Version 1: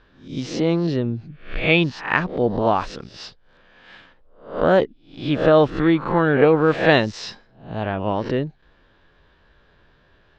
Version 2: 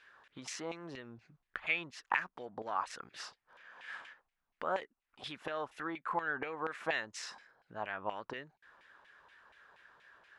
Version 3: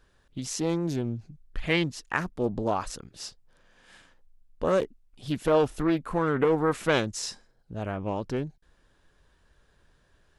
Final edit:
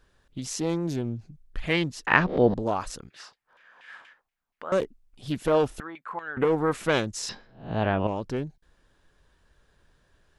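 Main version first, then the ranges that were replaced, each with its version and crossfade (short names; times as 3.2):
3
2.07–2.54 from 1
3.1–4.72 from 2
5.8–6.37 from 2
7.29–8.07 from 1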